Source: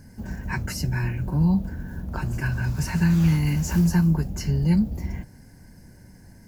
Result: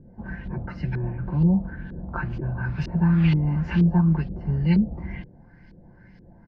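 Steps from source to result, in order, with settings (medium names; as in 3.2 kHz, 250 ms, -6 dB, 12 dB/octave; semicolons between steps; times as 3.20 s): resonant high shelf 5.9 kHz -11.5 dB, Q 1.5; comb 5.8 ms, depth 37%; LFO low-pass saw up 2.1 Hz 380–3600 Hz; trim -2.5 dB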